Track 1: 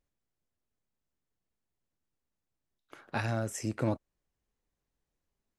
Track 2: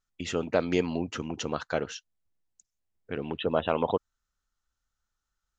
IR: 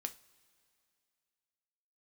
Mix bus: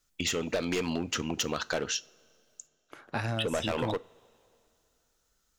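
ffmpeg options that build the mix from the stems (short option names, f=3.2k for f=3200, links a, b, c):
-filter_complex "[0:a]volume=1.5dB,asplit=2[a][b];[b]volume=-15dB[c];[1:a]highshelf=f=2.5k:g=11.5,volume=22.5dB,asoftclip=hard,volume=-22.5dB,volume=0dB,asplit=3[d][e][f];[d]atrim=end=2.67,asetpts=PTS-STARTPTS,afade=t=out:st=2.666:d=0.004:c=hsin[g];[e]atrim=start=2.67:end=3.36,asetpts=PTS-STARTPTS,volume=0[h];[f]atrim=start=3.36,asetpts=PTS-STARTPTS,afade=t=in:d=0.004:c=hsin[i];[g][h][i]concat=n=3:v=0:a=1,asplit=2[j][k];[k]volume=-3.5dB[l];[2:a]atrim=start_sample=2205[m];[c][l]amix=inputs=2:normalize=0[n];[n][m]afir=irnorm=-1:irlink=0[o];[a][j][o]amix=inputs=3:normalize=0,acompressor=threshold=-27dB:ratio=6"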